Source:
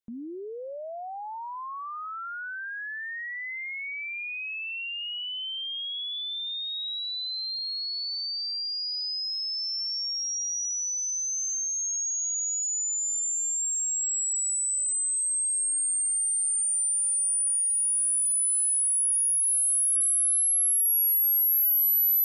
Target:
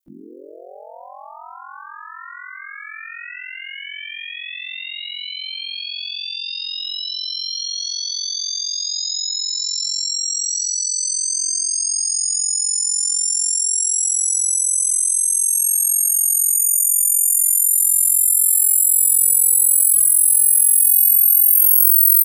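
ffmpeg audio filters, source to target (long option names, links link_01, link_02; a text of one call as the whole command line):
ffmpeg -i in.wav -filter_complex "[0:a]asplit=4[link_01][link_02][link_03][link_04];[link_02]asetrate=33038,aresample=44100,atempo=1.33484,volume=-7dB[link_05];[link_03]asetrate=35002,aresample=44100,atempo=1.25992,volume=-18dB[link_06];[link_04]asetrate=58866,aresample=44100,atempo=0.749154,volume=-5dB[link_07];[link_01][link_05][link_06][link_07]amix=inputs=4:normalize=0,aeval=exprs='val(0)*sin(2*PI*22*n/s)':channel_layout=same,crystalizer=i=4:c=0,asplit=2[link_08][link_09];[link_09]acompressor=threshold=-17dB:ratio=6,volume=-2dB[link_10];[link_08][link_10]amix=inputs=2:normalize=0,volume=-6.5dB" out.wav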